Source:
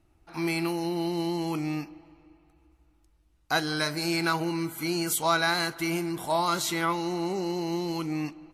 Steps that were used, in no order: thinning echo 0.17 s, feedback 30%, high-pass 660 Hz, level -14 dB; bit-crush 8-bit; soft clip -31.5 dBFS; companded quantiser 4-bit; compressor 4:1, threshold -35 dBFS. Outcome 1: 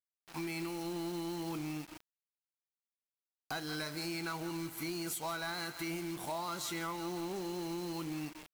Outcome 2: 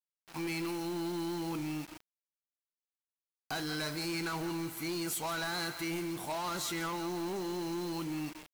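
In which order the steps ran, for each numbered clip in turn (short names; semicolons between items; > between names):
thinning echo > companded quantiser > bit-crush > compressor > soft clip; thinning echo > companded quantiser > soft clip > compressor > bit-crush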